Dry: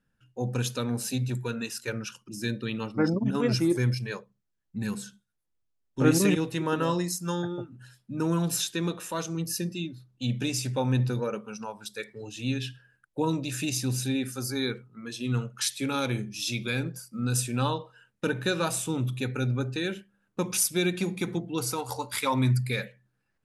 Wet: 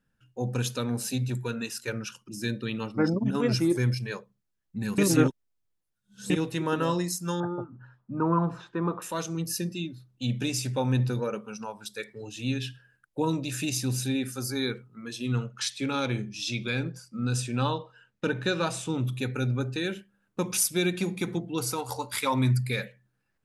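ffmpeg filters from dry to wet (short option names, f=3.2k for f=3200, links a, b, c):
-filter_complex "[0:a]asettb=1/sr,asplit=3[a][b][c];[a]atrim=end=7.404[d];[b]atrim=start=7.4:end=9.02,asetpts=PTS-STARTPTS,afade=t=in:d=0.004:c=qsin,afade=t=out:st=1.616:d=0.004:c=qsin,lowpass=f=1.1k:t=q:w=3.4[e];[c]atrim=start=9.016[f];[d][e]acrossfade=d=0.004:c1=hsin:c2=qsin[g];[g][f]acrossfade=d=0.004:c1=qsin:c2=hsin,asettb=1/sr,asplit=3[h][i][j];[h]atrim=end=15.324[k];[i]atrim=start=15.32:end=19.05,asetpts=PTS-STARTPTS,afade=t=in:d=0.004:c=qsin,afade=t=out:st=3.726:d=0.004:c=qsin,lowpass=6.4k[l];[j]atrim=start=19.046[m];[k][l]acrossfade=d=0.004:c1=hsin:c2=qsin[n];[n][m]acrossfade=d=0.004:c1=qsin:c2=hsin,asplit=3[o][p][q];[o]atrim=end=4.982[r];[p]atrim=start=4.978:end=6.302,asetpts=PTS-STARTPTS,areverse[s];[q]atrim=start=6.298[t];[r][s]acrossfade=d=0.004:c1=hsin:c2=hsin[u];[u][t]acrossfade=d=0.004:c1=hsin:c2=hsin"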